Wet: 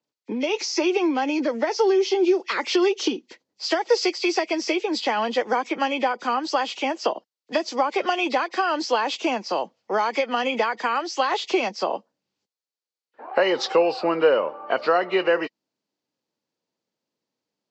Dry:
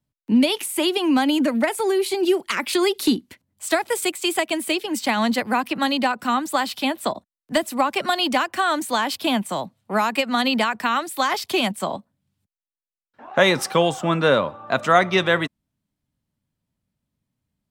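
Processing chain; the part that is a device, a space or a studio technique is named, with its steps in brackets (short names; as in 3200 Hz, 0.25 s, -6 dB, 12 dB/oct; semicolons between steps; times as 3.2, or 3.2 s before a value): hearing aid with frequency lowering (nonlinear frequency compression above 1800 Hz 1.5:1; compressor 2.5:1, threshold -22 dBFS, peak gain reduction 8.5 dB; speaker cabinet 370–7000 Hz, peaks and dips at 480 Hz +9 dB, 840 Hz +4 dB, 4400 Hz +7 dB); bell 350 Hz +6.5 dB 0.48 oct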